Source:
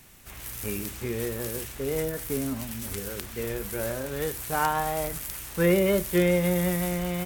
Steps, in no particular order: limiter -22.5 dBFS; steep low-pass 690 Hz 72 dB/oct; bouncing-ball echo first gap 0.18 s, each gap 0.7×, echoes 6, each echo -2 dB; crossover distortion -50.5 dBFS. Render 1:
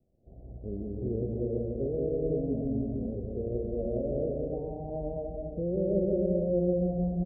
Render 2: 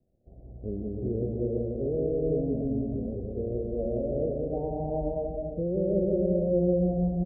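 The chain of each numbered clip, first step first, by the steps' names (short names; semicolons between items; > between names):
limiter > bouncing-ball echo > crossover distortion > steep low-pass; crossover distortion > steep low-pass > limiter > bouncing-ball echo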